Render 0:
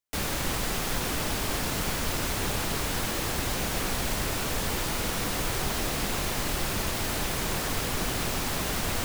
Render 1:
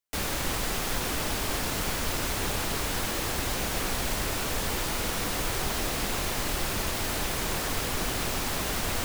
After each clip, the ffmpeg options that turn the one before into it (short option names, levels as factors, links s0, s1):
-af "equalizer=f=150:t=o:w=1.3:g=-3"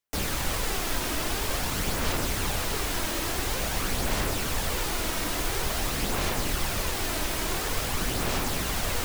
-af "aphaser=in_gain=1:out_gain=1:delay=3.2:decay=0.32:speed=0.48:type=sinusoidal"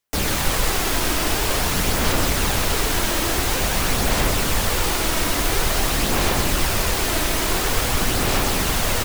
-af "aecho=1:1:127:0.501,volume=2.24"